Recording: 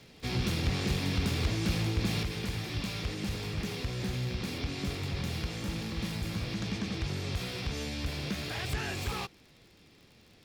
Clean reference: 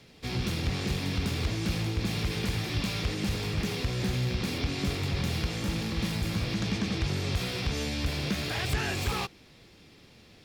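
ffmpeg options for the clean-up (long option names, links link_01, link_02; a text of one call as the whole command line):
ffmpeg -i in.wav -af "adeclick=threshold=4,asetnsamples=nb_out_samples=441:pad=0,asendcmd='2.23 volume volume 4.5dB',volume=0dB" out.wav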